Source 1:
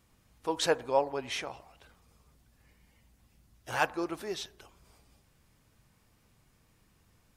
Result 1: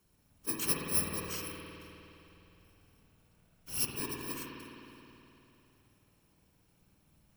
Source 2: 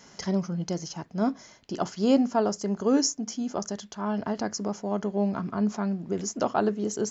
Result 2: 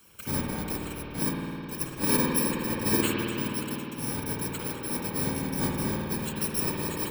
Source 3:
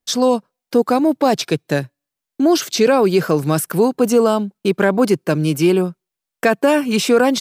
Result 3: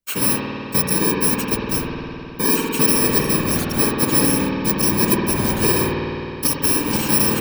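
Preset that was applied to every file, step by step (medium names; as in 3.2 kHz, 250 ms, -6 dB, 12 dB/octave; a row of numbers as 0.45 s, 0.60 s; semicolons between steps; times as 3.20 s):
bit-reversed sample order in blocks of 64 samples; whisper effect; spring tank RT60 3.1 s, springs 52 ms, chirp 45 ms, DRR -1.5 dB; trim -4.5 dB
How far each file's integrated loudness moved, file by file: -1.5 LU, -0.5 LU, -1.0 LU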